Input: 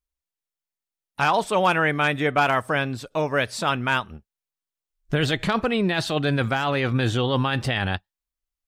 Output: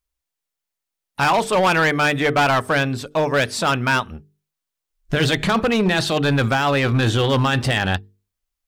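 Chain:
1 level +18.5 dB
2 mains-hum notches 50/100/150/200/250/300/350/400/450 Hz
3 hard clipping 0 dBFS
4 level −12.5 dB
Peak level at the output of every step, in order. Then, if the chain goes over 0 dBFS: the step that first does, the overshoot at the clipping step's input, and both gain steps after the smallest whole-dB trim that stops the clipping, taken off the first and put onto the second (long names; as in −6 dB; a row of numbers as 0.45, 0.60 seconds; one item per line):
+8.5, +9.5, 0.0, −12.5 dBFS
step 1, 9.5 dB
step 1 +8.5 dB, step 4 −2.5 dB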